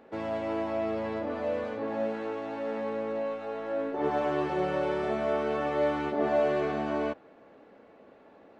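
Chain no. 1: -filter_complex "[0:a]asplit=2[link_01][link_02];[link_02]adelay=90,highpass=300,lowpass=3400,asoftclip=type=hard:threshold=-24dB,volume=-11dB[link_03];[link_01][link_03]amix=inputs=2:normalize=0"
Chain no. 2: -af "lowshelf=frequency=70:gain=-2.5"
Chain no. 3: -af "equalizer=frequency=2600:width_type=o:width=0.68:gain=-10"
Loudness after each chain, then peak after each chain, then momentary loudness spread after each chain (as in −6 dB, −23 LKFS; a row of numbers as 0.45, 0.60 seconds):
−30.5, −30.5, −31.0 LKFS; −15.0, −15.5, −16.0 dBFS; 7, 7, 7 LU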